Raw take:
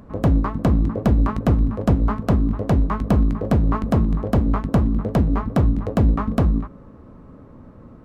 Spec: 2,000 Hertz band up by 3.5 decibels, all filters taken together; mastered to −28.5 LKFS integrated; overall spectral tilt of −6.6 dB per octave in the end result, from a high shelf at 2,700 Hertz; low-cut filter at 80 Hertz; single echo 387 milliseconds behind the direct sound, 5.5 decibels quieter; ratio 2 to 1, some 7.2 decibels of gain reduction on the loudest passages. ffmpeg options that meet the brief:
ffmpeg -i in.wav -af "highpass=80,equalizer=frequency=2000:width_type=o:gain=8,highshelf=frequency=2700:gain=-8.5,acompressor=threshold=-26dB:ratio=2,aecho=1:1:387:0.531,volume=-1.5dB" out.wav

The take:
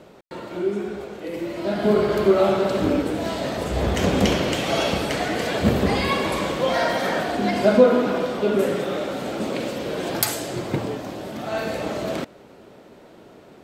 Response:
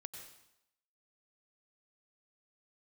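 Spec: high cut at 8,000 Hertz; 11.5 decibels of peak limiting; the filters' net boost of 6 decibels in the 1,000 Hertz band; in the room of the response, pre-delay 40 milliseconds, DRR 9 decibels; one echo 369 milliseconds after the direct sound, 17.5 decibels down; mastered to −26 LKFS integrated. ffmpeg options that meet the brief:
-filter_complex "[0:a]lowpass=8000,equalizer=frequency=1000:width_type=o:gain=8,alimiter=limit=-12.5dB:level=0:latency=1,aecho=1:1:369:0.133,asplit=2[link_01][link_02];[1:a]atrim=start_sample=2205,adelay=40[link_03];[link_02][link_03]afir=irnorm=-1:irlink=0,volume=-5dB[link_04];[link_01][link_04]amix=inputs=2:normalize=0,volume=-3.5dB"

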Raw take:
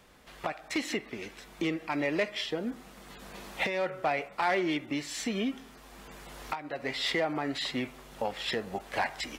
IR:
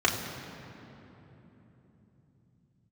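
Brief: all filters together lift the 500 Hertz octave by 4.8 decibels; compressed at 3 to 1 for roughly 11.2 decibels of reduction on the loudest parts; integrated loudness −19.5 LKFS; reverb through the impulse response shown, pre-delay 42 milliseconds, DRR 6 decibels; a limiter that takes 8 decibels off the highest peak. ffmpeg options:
-filter_complex "[0:a]equalizer=frequency=500:width_type=o:gain=6,acompressor=threshold=-37dB:ratio=3,alimiter=level_in=5.5dB:limit=-24dB:level=0:latency=1,volume=-5.5dB,asplit=2[link_01][link_02];[1:a]atrim=start_sample=2205,adelay=42[link_03];[link_02][link_03]afir=irnorm=-1:irlink=0,volume=-20dB[link_04];[link_01][link_04]amix=inputs=2:normalize=0,volume=20dB"

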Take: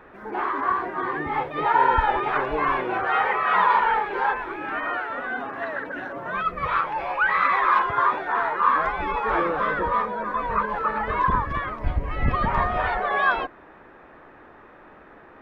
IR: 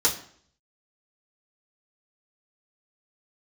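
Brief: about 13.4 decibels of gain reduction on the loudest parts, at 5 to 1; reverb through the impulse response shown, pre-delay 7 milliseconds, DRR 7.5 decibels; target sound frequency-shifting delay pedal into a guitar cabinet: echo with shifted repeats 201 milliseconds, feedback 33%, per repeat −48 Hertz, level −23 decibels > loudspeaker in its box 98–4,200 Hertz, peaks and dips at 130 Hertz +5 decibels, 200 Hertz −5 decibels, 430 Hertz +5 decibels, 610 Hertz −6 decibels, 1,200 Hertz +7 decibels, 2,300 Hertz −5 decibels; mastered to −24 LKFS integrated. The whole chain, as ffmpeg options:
-filter_complex "[0:a]acompressor=threshold=-30dB:ratio=5,asplit=2[link_01][link_02];[1:a]atrim=start_sample=2205,adelay=7[link_03];[link_02][link_03]afir=irnorm=-1:irlink=0,volume=-20dB[link_04];[link_01][link_04]amix=inputs=2:normalize=0,asplit=3[link_05][link_06][link_07];[link_06]adelay=201,afreqshift=-48,volume=-23dB[link_08];[link_07]adelay=402,afreqshift=-96,volume=-32.6dB[link_09];[link_05][link_08][link_09]amix=inputs=3:normalize=0,highpass=98,equalizer=frequency=130:width_type=q:width=4:gain=5,equalizer=frequency=200:width_type=q:width=4:gain=-5,equalizer=frequency=430:width_type=q:width=4:gain=5,equalizer=frequency=610:width_type=q:width=4:gain=-6,equalizer=frequency=1200:width_type=q:width=4:gain=7,equalizer=frequency=2300:width_type=q:width=4:gain=-5,lowpass=frequency=4200:width=0.5412,lowpass=frequency=4200:width=1.3066,volume=5dB"

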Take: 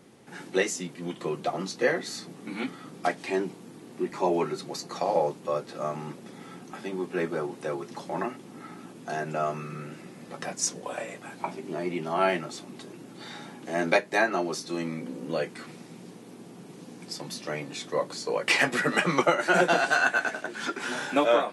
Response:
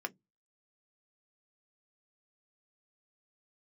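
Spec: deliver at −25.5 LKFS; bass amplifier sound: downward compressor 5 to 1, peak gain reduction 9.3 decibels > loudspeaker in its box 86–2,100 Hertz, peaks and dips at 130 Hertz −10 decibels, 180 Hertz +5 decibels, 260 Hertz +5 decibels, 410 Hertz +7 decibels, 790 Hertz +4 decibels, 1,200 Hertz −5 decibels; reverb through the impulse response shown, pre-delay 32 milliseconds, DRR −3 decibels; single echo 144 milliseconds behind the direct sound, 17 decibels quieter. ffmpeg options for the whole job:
-filter_complex "[0:a]aecho=1:1:144:0.141,asplit=2[link_01][link_02];[1:a]atrim=start_sample=2205,adelay=32[link_03];[link_02][link_03]afir=irnorm=-1:irlink=0,volume=1dB[link_04];[link_01][link_04]amix=inputs=2:normalize=0,acompressor=threshold=-22dB:ratio=5,highpass=frequency=86:width=0.5412,highpass=frequency=86:width=1.3066,equalizer=frequency=130:width_type=q:width=4:gain=-10,equalizer=frequency=180:width_type=q:width=4:gain=5,equalizer=frequency=260:width_type=q:width=4:gain=5,equalizer=frequency=410:width_type=q:width=4:gain=7,equalizer=frequency=790:width_type=q:width=4:gain=4,equalizer=frequency=1200:width_type=q:width=4:gain=-5,lowpass=frequency=2100:width=0.5412,lowpass=frequency=2100:width=1.3066,volume=1dB"

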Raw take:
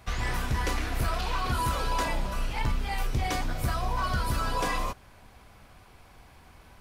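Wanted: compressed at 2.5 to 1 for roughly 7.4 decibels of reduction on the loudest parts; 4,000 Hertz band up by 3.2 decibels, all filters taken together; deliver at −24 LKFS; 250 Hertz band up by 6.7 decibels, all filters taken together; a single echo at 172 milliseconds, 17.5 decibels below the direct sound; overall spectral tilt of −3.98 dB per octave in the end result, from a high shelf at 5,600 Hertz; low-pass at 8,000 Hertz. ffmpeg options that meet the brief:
ffmpeg -i in.wav -af "lowpass=8000,equalizer=frequency=250:width_type=o:gain=8.5,equalizer=frequency=4000:width_type=o:gain=6.5,highshelf=frequency=5600:gain=-6,acompressor=threshold=-33dB:ratio=2.5,aecho=1:1:172:0.133,volume=11dB" out.wav

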